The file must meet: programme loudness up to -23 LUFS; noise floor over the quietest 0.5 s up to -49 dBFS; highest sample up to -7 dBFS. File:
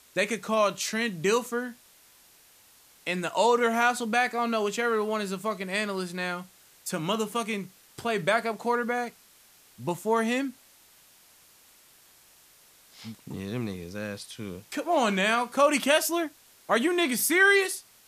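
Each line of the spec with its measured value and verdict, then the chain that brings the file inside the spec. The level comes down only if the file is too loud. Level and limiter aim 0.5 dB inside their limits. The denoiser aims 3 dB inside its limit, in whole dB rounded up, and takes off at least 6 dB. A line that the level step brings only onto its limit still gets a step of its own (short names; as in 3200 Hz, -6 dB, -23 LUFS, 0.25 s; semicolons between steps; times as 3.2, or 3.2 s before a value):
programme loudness -26.5 LUFS: OK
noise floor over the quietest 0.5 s -58 dBFS: OK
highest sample -8.0 dBFS: OK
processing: none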